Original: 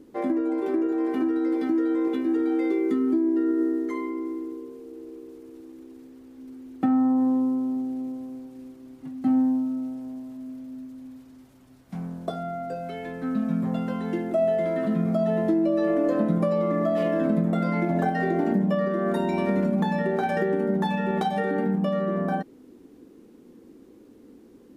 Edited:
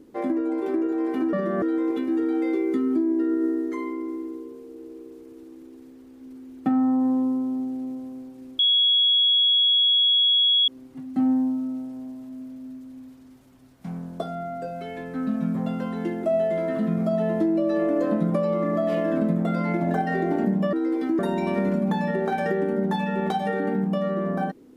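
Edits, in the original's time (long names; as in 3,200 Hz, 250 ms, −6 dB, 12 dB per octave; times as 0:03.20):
0:01.33–0:01.79: swap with 0:18.81–0:19.10
0:08.76: insert tone 3,340 Hz −16 dBFS 2.09 s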